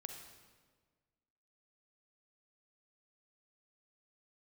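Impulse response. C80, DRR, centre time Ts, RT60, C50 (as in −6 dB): 6.5 dB, 4.0 dB, 39 ms, 1.5 s, 4.5 dB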